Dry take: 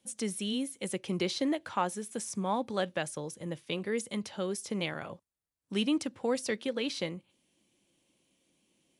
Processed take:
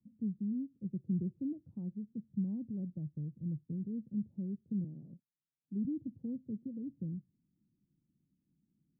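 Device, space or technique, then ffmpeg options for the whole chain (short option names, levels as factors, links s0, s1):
the neighbour's flat through the wall: -filter_complex "[0:a]asettb=1/sr,asplit=3[s0][s1][s2];[s0]atrim=end=4.844[s3];[s1]atrim=start=4.84:end=5.85,asetpts=PTS-STARTPTS,afade=t=in:d=0.004:c=qsin,afade=t=out:st=1.006:d=0.004:c=qsin,highpass=210[s4];[s2]atrim=start=5.846[s5];[s3][s4]acrossfade=d=0.004:c1=hsin:c2=qsin[s6];[s6][s5]acrossfade=d=0.004:c1=qsin:c2=hsin,lowpass=f=230:w=0.5412,lowpass=f=230:w=1.3066,equalizer=f=140:t=o:w=0.45:g=6,volume=1.12"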